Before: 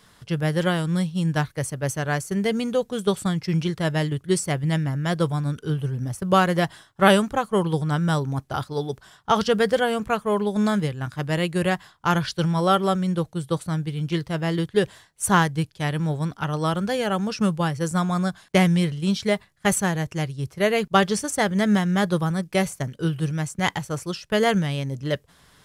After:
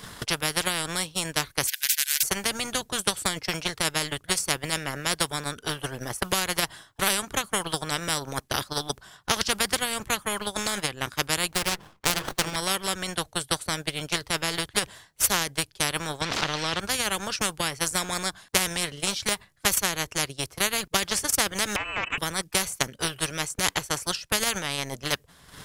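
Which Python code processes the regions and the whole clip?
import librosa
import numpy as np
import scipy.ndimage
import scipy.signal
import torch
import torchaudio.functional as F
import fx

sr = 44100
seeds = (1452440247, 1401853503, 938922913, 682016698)

y = fx.chain(x, sr, fx.brickwall_highpass(low_hz=1500.0),
    fx.spectral_comp(ratio=10.0), at=(1.67, 2.23))
y = fx.chain(y, sr, fx.hum_notches(base_hz=50, count=10),
    fx.running_max(window=17), at=(11.49, 12.56))
y = fx.chain(y, sr, fx.zero_step(step_db=-31.5),
    fx.cheby1_bandpass(low_hz=110.0, high_hz=4100.0, order=2),
    fx.env_flatten(amount_pct=70), at=(16.21, 16.8))
y = fx.chain(y, sr, fx.zero_step(step_db=-35.0),
    fx.hum_notches(base_hz=50, count=7),
    fx.freq_invert(carrier_hz=2800), at=(21.76, 22.18))
y = fx.high_shelf(y, sr, hz=9900.0, db=3.5)
y = fx.transient(y, sr, attack_db=10, sustain_db=-11)
y = fx.spectral_comp(y, sr, ratio=4.0)
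y = y * librosa.db_to_amplitude(-6.0)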